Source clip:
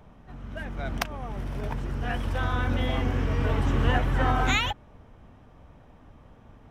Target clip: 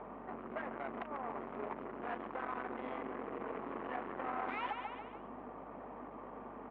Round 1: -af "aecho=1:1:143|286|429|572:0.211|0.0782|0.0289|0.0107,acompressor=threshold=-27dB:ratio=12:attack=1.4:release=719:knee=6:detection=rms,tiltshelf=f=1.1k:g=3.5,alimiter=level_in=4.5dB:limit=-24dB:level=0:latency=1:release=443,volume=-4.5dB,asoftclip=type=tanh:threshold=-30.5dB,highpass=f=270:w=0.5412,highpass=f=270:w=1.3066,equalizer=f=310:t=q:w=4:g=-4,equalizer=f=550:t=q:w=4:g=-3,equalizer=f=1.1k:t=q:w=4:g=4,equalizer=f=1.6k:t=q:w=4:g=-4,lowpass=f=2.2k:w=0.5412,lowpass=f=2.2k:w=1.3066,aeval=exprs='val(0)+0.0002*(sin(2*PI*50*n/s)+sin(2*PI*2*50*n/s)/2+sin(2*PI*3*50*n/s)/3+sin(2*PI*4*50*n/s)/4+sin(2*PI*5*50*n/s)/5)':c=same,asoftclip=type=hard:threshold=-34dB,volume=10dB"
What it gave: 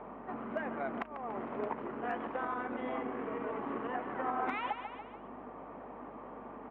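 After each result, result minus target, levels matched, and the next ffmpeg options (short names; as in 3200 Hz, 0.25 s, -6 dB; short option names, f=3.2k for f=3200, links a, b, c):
compressor: peak gain reduction +14 dB; soft clip: distortion -13 dB
-af "tiltshelf=f=1.1k:g=3.5,aecho=1:1:143|286|429|572:0.211|0.0782|0.0289|0.0107,alimiter=level_in=4.5dB:limit=-24dB:level=0:latency=1:release=443,volume=-4.5dB,asoftclip=type=tanh:threshold=-30.5dB,highpass=f=270:w=0.5412,highpass=f=270:w=1.3066,equalizer=f=310:t=q:w=4:g=-4,equalizer=f=550:t=q:w=4:g=-3,equalizer=f=1.1k:t=q:w=4:g=4,equalizer=f=1.6k:t=q:w=4:g=-4,lowpass=f=2.2k:w=0.5412,lowpass=f=2.2k:w=1.3066,aeval=exprs='val(0)+0.0002*(sin(2*PI*50*n/s)+sin(2*PI*2*50*n/s)/2+sin(2*PI*3*50*n/s)/3+sin(2*PI*4*50*n/s)/4+sin(2*PI*5*50*n/s)/5)':c=same,asoftclip=type=hard:threshold=-34dB,volume=10dB"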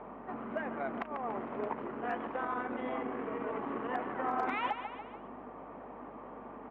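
soft clip: distortion -13 dB
-af "tiltshelf=f=1.1k:g=3.5,aecho=1:1:143|286|429|572:0.211|0.0782|0.0289|0.0107,alimiter=level_in=4.5dB:limit=-24dB:level=0:latency=1:release=443,volume=-4.5dB,asoftclip=type=tanh:threshold=-42.5dB,highpass=f=270:w=0.5412,highpass=f=270:w=1.3066,equalizer=f=310:t=q:w=4:g=-4,equalizer=f=550:t=q:w=4:g=-3,equalizer=f=1.1k:t=q:w=4:g=4,equalizer=f=1.6k:t=q:w=4:g=-4,lowpass=f=2.2k:w=0.5412,lowpass=f=2.2k:w=1.3066,aeval=exprs='val(0)+0.0002*(sin(2*PI*50*n/s)+sin(2*PI*2*50*n/s)/2+sin(2*PI*3*50*n/s)/3+sin(2*PI*4*50*n/s)/4+sin(2*PI*5*50*n/s)/5)':c=same,asoftclip=type=hard:threshold=-34dB,volume=10dB"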